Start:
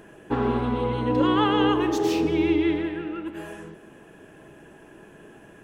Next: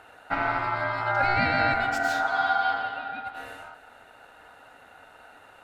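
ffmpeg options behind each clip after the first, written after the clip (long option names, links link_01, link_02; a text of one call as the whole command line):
ffmpeg -i in.wav -af "aeval=exprs='val(0)*sin(2*PI*1100*n/s)':channel_layout=same" out.wav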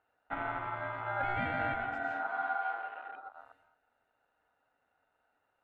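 ffmpeg -i in.wav -af "afwtdn=0.0224,highshelf=frequency=3400:gain=-9.5,volume=-9dB" out.wav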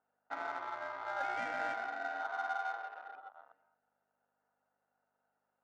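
ffmpeg -i in.wav -af "aeval=exprs='val(0)+0.000282*(sin(2*PI*50*n/s)+sin(2*PI*2*50*n/s)/2+sin(2*PI*3*50*n/s)/3+sin(2*PI*4*50*n/s)/4+sin(2*PI*5*50*n/s)/5)':channel_layout=same,adynamicsmooth=sensitivity=6:basefreq=1600,highpass=410,volume=-2.5dB" out.wav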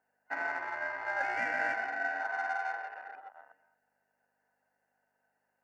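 ffmpeg -i in.wav -af "superequalizer=10b=0.501:11b=2.51:12b=1.41:13b=0.316,volume=3dB" out.wav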